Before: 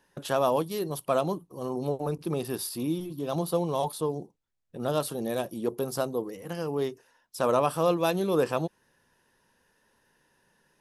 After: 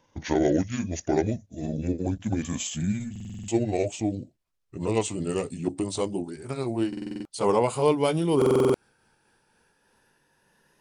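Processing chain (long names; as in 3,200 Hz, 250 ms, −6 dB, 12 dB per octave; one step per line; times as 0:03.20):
pitch glide at a constant tempo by −10 semitones ending unshifted
buffer that repeats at 0:03.11/0:06.88/0:08.37, samples 2,048, times 7
level +3.5 dB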